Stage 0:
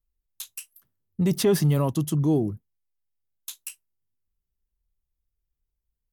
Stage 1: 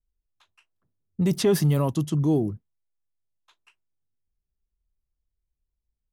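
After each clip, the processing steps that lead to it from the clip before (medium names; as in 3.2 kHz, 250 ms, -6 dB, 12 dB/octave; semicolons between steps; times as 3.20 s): level-controlled noise filter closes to 710 Hz, open at -19.5 dBFS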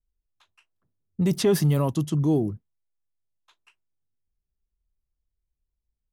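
no audible change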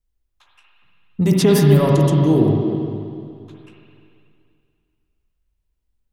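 reverberation RT60 2.4 s, pre-delay 47 ms, DRR -2 dB; trim +5.5 dB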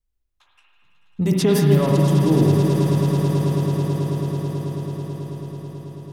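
echo with a slow build-up 109 ms, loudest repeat 8, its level -13.5 dB; trim -3.5 dB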